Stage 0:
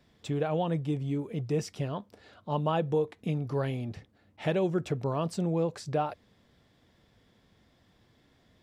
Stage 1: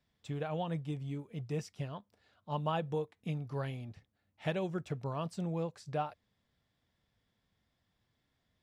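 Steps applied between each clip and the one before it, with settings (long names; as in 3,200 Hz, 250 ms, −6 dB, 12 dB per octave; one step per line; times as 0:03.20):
parametric band 360 Hz −6.5 dB 1.6 octaves
expander for the loud parts 1.5 to 1, over −49 dBFS
level −2 dB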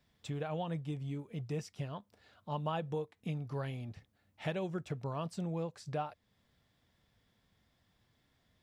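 downward compressor 1.5 to 1, threshold −52 dBFS, peak gain reduction 8.5 dB
level +5.5 dB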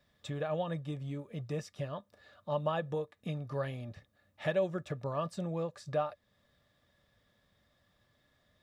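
hollow resonant body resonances 580/1,200/1,700/3,700 Hz, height 12 dB, ringing for 45 ms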